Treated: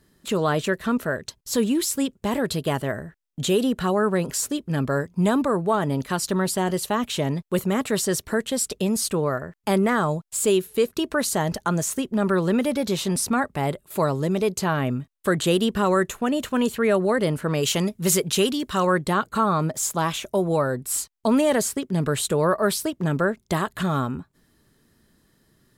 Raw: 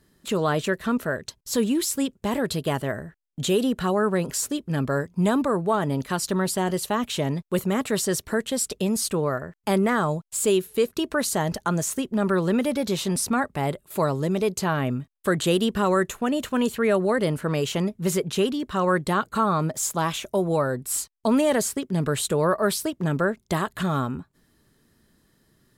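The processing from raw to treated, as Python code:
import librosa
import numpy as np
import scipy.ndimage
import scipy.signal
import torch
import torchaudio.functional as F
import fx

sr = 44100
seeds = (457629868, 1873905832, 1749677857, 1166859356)

y = fx.high_shelf(x, sr, hz=2900.0, db=9.5, at=(17.63, 18.87))
y = y * 10.0 ** (1.0 / 20.0)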